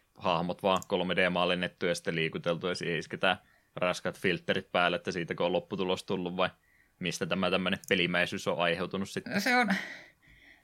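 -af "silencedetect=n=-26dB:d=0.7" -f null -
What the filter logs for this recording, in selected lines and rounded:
silence_start: 9.80
silence_end: 10.63 | silence_duration: 0.83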